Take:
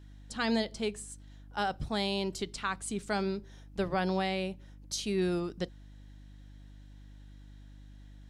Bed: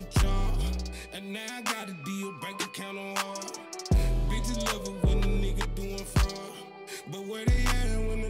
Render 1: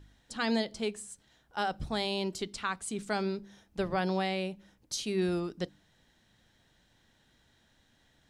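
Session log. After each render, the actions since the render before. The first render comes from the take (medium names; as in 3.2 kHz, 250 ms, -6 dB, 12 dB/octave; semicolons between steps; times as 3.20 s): de-hum 50 Hz, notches 6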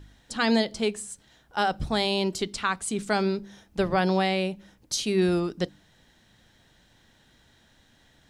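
trim +7 dB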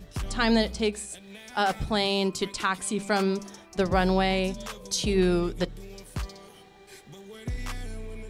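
add bed -8.5 dB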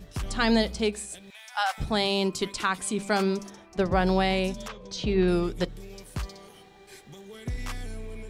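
1.30–1.78 s: inverse Chebyshev high-pass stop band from 370 Hz; 3.50–4.07 s: treble shelf 4.2 kHz -9 dB; 4.68–5.28 s: distance through air 170 m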